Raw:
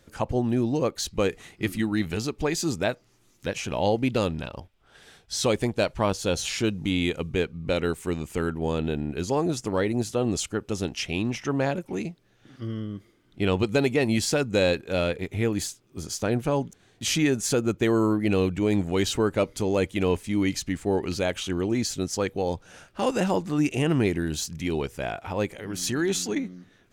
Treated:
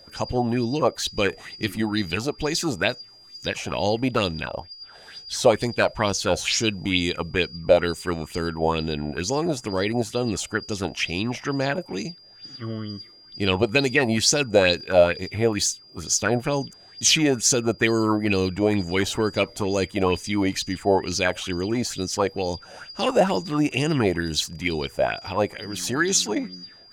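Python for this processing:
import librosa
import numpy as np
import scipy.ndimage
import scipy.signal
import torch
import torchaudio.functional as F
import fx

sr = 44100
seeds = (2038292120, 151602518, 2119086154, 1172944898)

y = x + 10.0 ** (-48.0 / 20.0) * np.sin(2.0 * np.pi * 4800.0 * np.arange(len(x)) / sr)
y = fx.bell_lfo(y, sr, hz=2.2, low_hz=600.0, high_hz=6500.0, db=15)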